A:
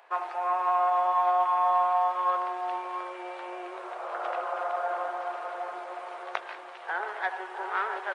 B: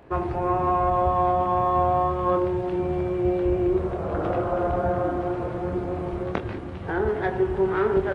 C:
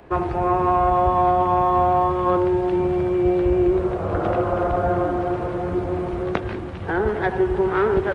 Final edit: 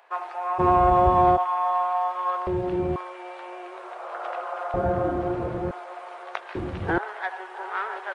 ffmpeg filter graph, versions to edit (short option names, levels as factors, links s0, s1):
-filter_complex "[2:a]asplit=2[s0][s1];[1:a]asplit=2[s2][s3];[0:a]asplit=5[s4][s5][s6][s7][s8];[s4]atrim=end=0.6[s9];[s0]atrim=start=0.58:end=1.38[s10];[s5]atrim=start=1.36:end=2.472[s11];[s2]atrim=start=2.468:end=2.962[s12];[s6]atrim=start=2.958:end=4.742[s13];[s3]atrim=start=4.738:end=5.712[s14];[s7]atrim=start=5.708:end=6.552[s15];[s1]atrim=start=6.548:end=6.982[s16];[s8]atrim=start=6.978[s17];[s9][s10]acrossfade=d=0.02:c1=tri:c2=tri[s18];[s18][s11]acrossfade=d=0.02:c1=tri:c2=tri[s19];[s19][s12]acrossfade=d=0.004:c1=hsin:c2=hsin[s20];[s20][s13]acrossfade=d=0.004:c1=hsin:c2=hsin[s21];[s21][s14]acrossfade=d=0.004:c1=hsin:c2=hsin[s22];[s22][s15]acrossfade=d=0.004:c1=hsin:c2=hsin[s23];[s23][s16]acrossfade=d=0.004:c1=hsin:c2=hsin[s24];[s24][s17]acrossfade=d=0.004:c1=hsin:c2=hsin"